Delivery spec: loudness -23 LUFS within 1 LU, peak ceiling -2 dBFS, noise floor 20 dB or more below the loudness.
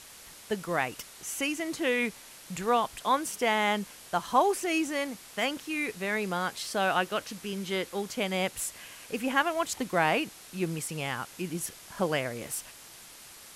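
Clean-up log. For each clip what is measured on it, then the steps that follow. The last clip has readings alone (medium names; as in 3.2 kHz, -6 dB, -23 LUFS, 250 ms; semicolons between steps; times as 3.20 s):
noise floor -50 dBFS; noise floor target -51 dBFS; loudness -30.5 LUFS; peak level -11.0 dBFS; loudness target -23.0 LUFS
-> noise reduction 6 dB, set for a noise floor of -50 dBFS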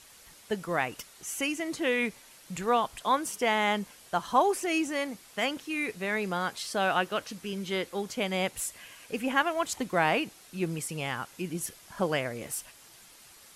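noise floor -54 dBFS; loudness -30.5 LUFS; peak level -11.0 dBFS; loudness target -23.0 LUFS
-> trim +7.5 dB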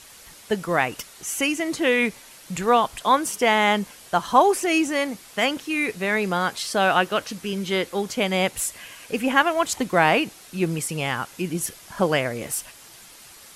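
loudness -23.0 LUFS; peak level -3.5 dBFS; noise floor -47 dBFS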